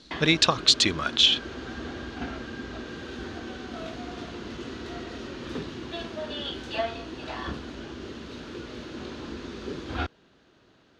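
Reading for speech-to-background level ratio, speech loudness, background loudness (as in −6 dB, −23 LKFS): 16.0 dB, −20.5 LKFS, −36.5 LKFS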